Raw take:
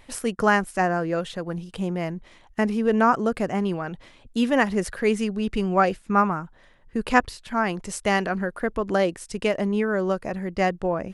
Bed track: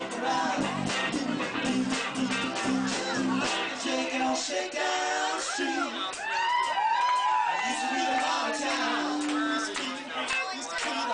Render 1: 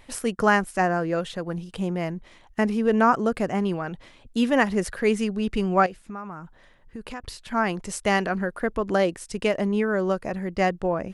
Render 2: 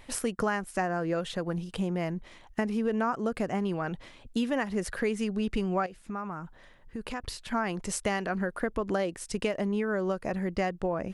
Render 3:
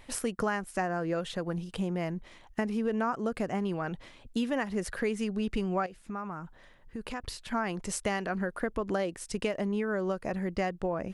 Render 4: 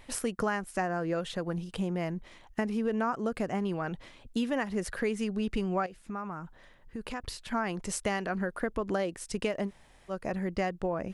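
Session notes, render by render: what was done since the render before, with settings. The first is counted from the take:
0:05.86–0:07.24: downward compressor 4 to 1, threshold −35 dBFS
downward compressor 5 to 1, threshold −26 dBFS, peak gain reduction 11.5 dB
level −1.5 dB
0:09.68–0:10.11: fill with room tone, crossfade 0.06 s

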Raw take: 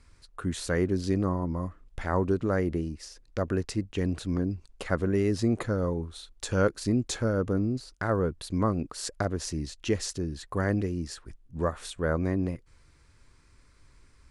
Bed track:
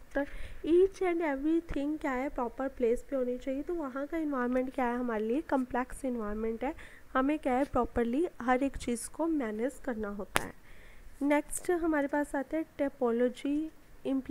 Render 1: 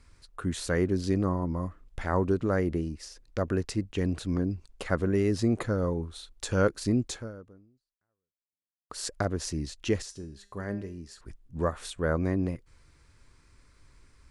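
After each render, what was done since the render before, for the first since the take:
0:07.04–0:08.90: fade out exponential
0:10.02–0:11.21: tuned comb filter 200 Hz, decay 0.45 s, mix 70%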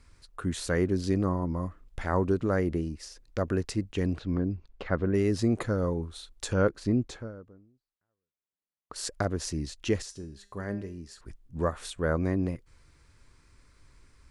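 0:04.18–0:05.14: high-frequency loss of the air 220 metres
0:06.53–0:08.96: low-pass filter 2,200 Hz 6 dB per octave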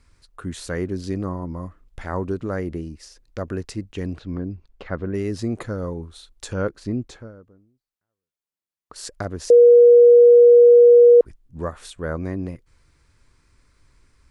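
0:09.50–0:11.21: beep over 479 Hz −6.5 dBFS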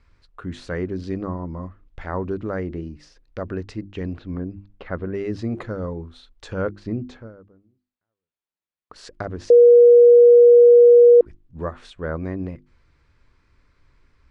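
low-pass filter 3,600 Hz 12 dB per octave
mains-hum notches 50/100/150/200/250/300/350 Hz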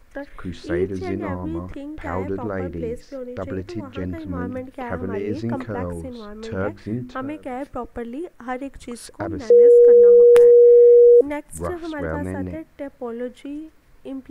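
mix in bed track −0.5 dB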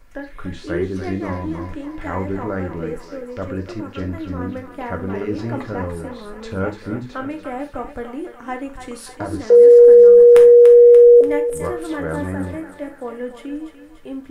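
feedback echo with a high-pass in the loop 291 ms, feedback 61%, high-pass 600 Hz, level −8.5 dB
reverb whose tail is shaped and stops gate 110 ms falling, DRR 3.5 dB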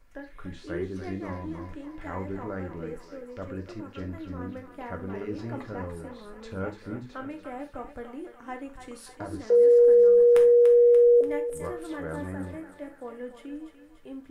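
level −10 dB

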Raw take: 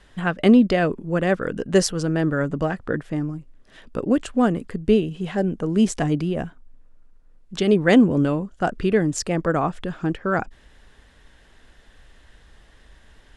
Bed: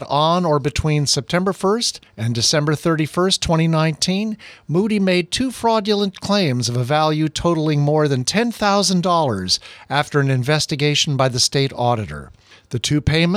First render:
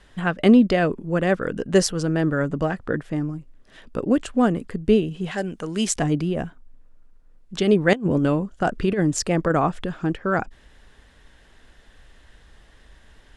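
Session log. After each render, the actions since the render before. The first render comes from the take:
0:05.31–0:05.96: tilt shelving filter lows −7.5 dB
0:07.93–0:09.86: compressor whose output falls as the input rises −19 dBFS, ratio −0.5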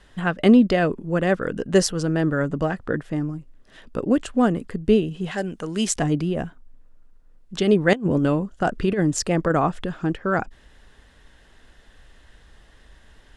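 notch filter 2,300 Hz, Q 27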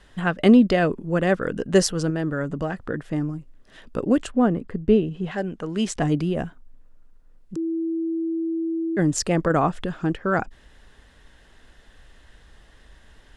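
0:02.10–0:03.09: downward compressor 1.5 to 1, threshold −28 dBFS
0:04.30–0:06.01: low-pass filter 1,200 Hz → 2,900 Hz 6 dB per octave
0:07.56–0:08.97: beep over 328 Hz −22.5 dBFS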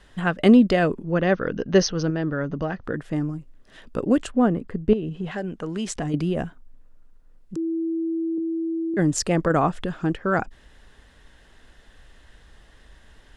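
0:01.03–0:02.84: linear-phase brick-wall low-pass 6,500 Hz
0:04.93–0:06.14: downward compressor 4 to 1, threshold −24 dBFS
0:08.37–0:08.94: EQ curve with evenly spaced ripples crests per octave 1.7, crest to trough 13 dB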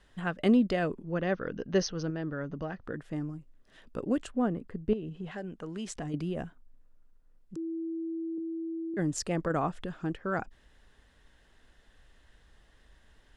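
level −9.5 dB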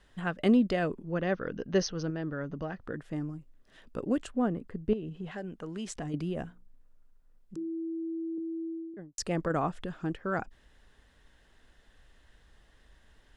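0:06.42–0:08.03: mains-hum notches 60/120/180/240/300/360/420/480/540 Hz
0:08.59–0:09.18: fade out and dull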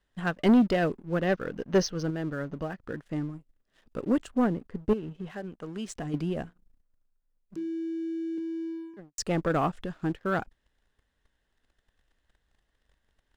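leveller curve on the samples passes 2
expander for the loud parts 1.5 to 1, over −37 dBFS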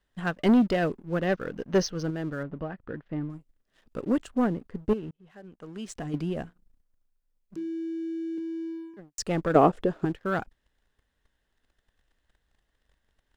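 0:02.43–0:03.30: high-frequency loss of the air 290 metres
0:05.11–0:05.98: fade in
0:09.55–0:10.05: parametric band 440 Hz +14.5 dB 1.7 octaves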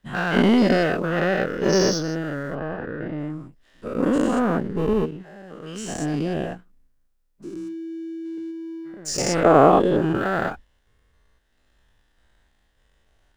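every bin's largest magnitude spread in time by 240 ms
floating-point word with a short mantissa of 8 bits

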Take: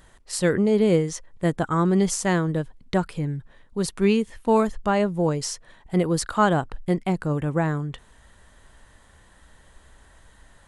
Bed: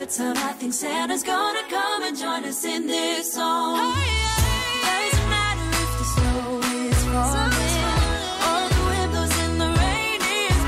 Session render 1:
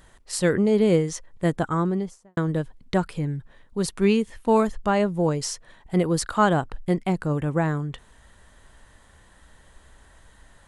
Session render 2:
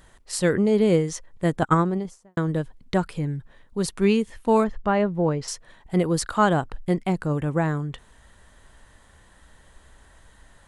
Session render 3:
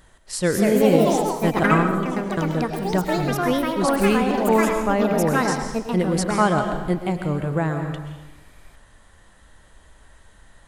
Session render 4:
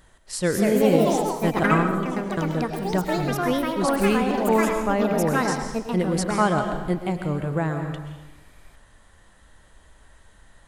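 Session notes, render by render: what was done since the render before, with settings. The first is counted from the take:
0:01.57–0:02.37: fade out and dull
0:01.62–0:02.05: transient designer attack +12 dB, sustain −10 dB; 0:04.64–0:05.48: drawn EQ curve 1,900 Hz 0 dB, 4,800 Hz −8 dB, 9,300 Hz −22 dB
comb and all-pass reverb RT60 1.1 s, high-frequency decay 0.95×, pre-delay 90 ms, DRR 5.5 dB; delay with pitch and tempo change per echo 281 ms, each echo +4 semitones, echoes 3
level −2 dB

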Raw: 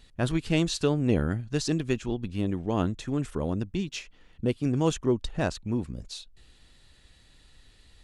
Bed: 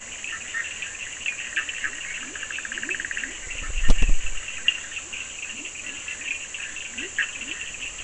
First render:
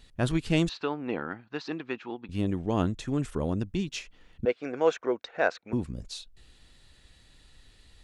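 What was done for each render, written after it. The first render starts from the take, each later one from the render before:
0:00.69–0:02.29: loudspeaker in its box 390–3,600 Hz, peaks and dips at 410 Hz −4 dB, 590 Hz −6 dB, 890 Hz +5 dB, 1,300 Hz +3 dB, 3,200 Hz −6 dB
0:04.45–0:05.73: loudspeaker in its box 480–5,200 Hz, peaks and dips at 490 Hz +8 dB, 700 Hz +6 dB, 1,500 Hz +9 dB, 2,200 Hz +7 dB, 3,100 Hz −7 dB, 4,700 Hz −6 dB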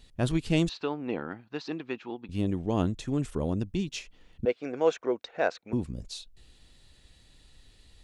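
parametric band 1,500 Hz −4.5 dB 1.2 octaves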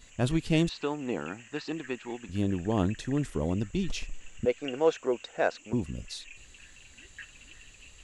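mix in bed −20.5 dB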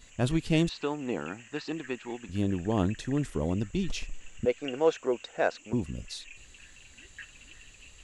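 no processing that can be heard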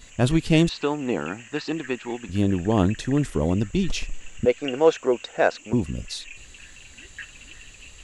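level +7 dB

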